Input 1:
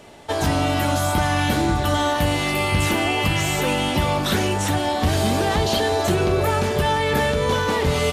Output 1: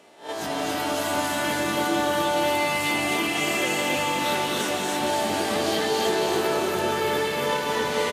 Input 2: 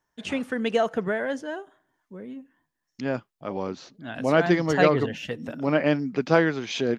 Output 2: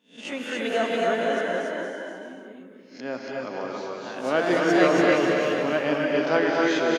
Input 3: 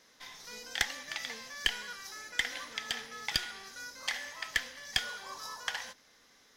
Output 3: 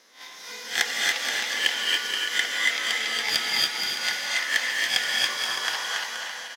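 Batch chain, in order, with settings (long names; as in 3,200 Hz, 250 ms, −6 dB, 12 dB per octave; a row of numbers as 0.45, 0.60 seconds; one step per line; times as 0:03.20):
peak hold with a rise ahead of every peak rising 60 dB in 0.34 s
high-pass filter 260 Hz 12 dB per octave
bouncing-ball delay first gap 280 ms, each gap 0.7×, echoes 5
reverb whose tail is shaped and stops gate 320 ms rising, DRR 0 dB
loudness normalisation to −24 LKFS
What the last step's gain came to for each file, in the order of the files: −8.5, −4.0, +4.0 decibels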